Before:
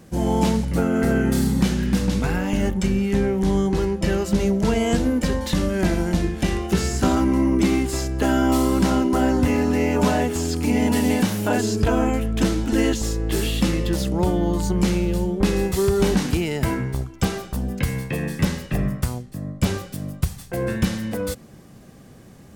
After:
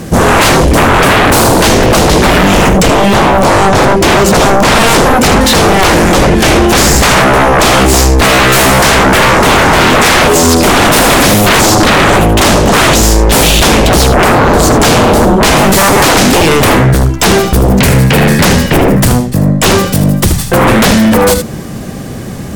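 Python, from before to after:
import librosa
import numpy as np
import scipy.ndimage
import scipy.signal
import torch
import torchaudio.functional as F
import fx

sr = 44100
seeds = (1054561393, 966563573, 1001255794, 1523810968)

y = x + 10.0 ** (-10.0 / 20.0) * np.pad(x, (int(77 * sr / 1000.0), 0))[:len(x)]
y = fx.fold_sine(y, sr, drive_db=17, ceiling_db=-6.5)
y = F.gain(torch.from_numpy(y), 3.5).numpy()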